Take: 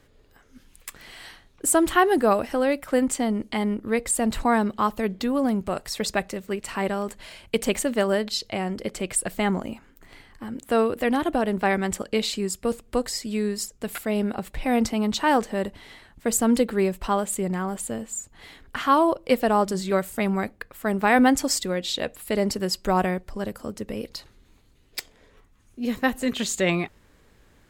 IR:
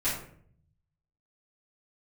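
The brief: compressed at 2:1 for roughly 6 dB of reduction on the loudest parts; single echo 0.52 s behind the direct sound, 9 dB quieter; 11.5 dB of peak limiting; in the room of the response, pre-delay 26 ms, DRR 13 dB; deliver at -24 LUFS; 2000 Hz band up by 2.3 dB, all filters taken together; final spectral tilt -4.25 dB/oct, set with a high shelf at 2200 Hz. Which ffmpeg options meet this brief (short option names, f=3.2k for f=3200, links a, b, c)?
-filter_complex "[0:a]equalizer=f=2k:t=o:g=6.5,highshelf=f=2.2k:g=-7.5,acompressor=threshold=-24dB:ratio=2,alimiter=limit=-23dB:level=0:latency=1,aecho=1:1:520:0.355,asplit=2[a][b];[1:a]atrim=start_sample=2205,adelay=26[c];[b][c]afir=irnorm=-1:irlink=0,volume=-21.5dB[d];[a][d]amix=inputs=2:normalize=0,volume=9dB"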